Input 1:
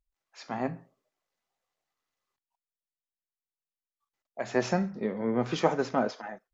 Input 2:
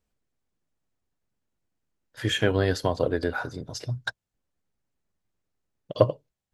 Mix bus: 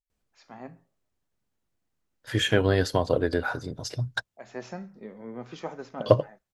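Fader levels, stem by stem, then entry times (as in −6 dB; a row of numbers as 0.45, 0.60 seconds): −11.0, +1.0 decibels; 0.00, 0.10 seconds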